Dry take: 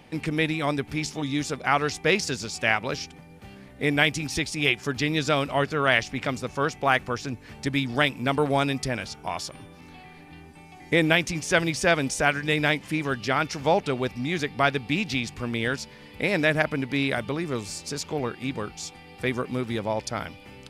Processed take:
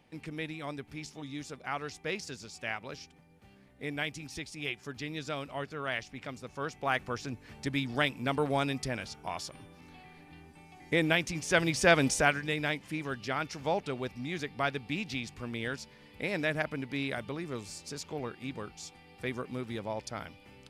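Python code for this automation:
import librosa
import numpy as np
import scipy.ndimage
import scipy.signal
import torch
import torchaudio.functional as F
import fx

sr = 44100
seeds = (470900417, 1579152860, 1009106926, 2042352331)

y = fx.gain(x, sr, db=fx.line((6.35, -13.5), (7.15, -6.5), (11.33, -6.5), (12.08, 0.0), (12.55, -9.0)))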